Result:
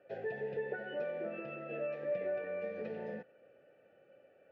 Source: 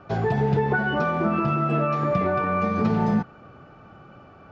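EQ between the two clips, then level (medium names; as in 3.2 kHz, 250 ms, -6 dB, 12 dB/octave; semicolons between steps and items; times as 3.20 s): vowel filter e; -3.0 dB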